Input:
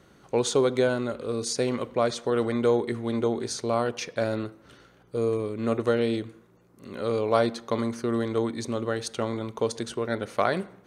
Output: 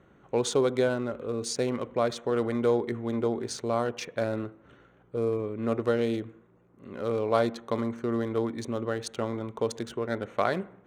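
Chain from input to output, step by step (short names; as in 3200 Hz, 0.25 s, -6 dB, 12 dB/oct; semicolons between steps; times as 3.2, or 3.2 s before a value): Wiener smoothing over 9 samples; gain -2 dB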